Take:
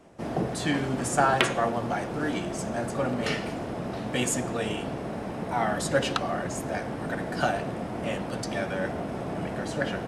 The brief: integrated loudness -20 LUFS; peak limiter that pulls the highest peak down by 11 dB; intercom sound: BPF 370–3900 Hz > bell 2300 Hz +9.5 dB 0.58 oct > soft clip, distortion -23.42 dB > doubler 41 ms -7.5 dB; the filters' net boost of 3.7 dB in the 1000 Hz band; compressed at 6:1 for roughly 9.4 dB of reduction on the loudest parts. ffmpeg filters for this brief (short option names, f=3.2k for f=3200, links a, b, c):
-filter_complex "[0:a]equalizer=f=1k:t=o:g=5,acompressor=threshold=-27dB:ratio=6,alimiter=limit=-23dB:level=0:latency=1,highpass=370,lowpass=3.9k,equalizer=f=2.3k:t=o:w=0.58:g=9.5,asoftclip=threshold=-23.5dB,asplit=2[a][b];[b]adelay=41,volume=-7.5dB[c];[a][c]amix=inputs=2:normalize=0,volume=14dB"